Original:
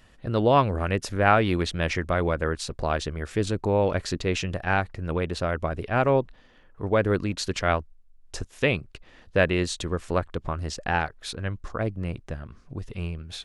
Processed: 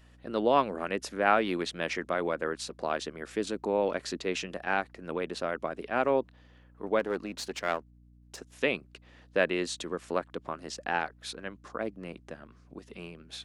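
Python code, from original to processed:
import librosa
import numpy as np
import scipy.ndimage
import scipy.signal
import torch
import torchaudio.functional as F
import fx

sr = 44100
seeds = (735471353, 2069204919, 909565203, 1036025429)

y = fx.halfwave_gain(x, sr, db=-7.0, at=(6.99, 8.52))
y = scipy.signal.sosfilt(scipy.signal.butter(4, 210.0, 'highpass', fs=sr, output='sos'), y)
y = fx.add_hum(y, sr, base_hz=60, snr_db=25)
y = y * 10.0 ** (-4.5 / 20.0)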